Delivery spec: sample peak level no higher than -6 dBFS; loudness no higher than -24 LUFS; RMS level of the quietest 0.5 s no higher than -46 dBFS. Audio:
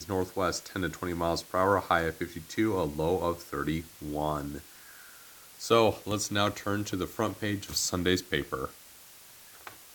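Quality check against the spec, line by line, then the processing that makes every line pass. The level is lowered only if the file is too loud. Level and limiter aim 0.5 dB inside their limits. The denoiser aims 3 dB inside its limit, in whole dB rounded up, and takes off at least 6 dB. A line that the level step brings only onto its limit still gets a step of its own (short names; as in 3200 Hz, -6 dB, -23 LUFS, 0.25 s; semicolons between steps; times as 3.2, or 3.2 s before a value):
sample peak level -8.0 dBFS: OK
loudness -30.0 LUFS: OK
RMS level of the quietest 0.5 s -52 dBFS: OK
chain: none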